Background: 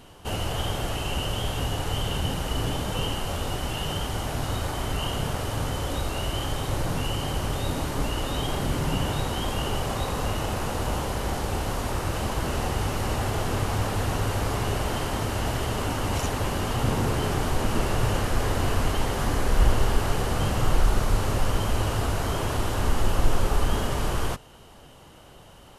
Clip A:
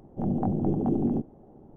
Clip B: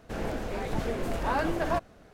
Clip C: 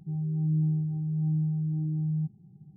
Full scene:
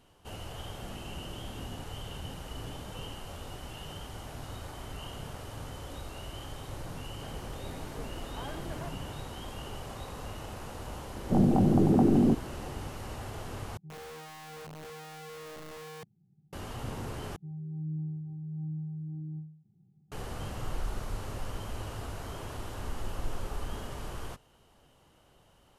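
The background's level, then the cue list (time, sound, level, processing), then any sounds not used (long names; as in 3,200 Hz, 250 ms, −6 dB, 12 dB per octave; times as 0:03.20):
background −13.5 dB
0:00.63: mix in A −17 dB + output level in coarse steps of 16 dB
0:07.10: mix in B −11.5 dB + downward compressor 1.5 to 1, threshold −34 dBFS
0:11.13: mix in A −13.5 dB + boost into a limiter +19 dB
0:13.77: overwrite with C −14 dB + wrap-around overflow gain 27.5 dB
0:17.36: overwrite with C −9.5 dB + every ending faded ahead of time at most 100 dB per second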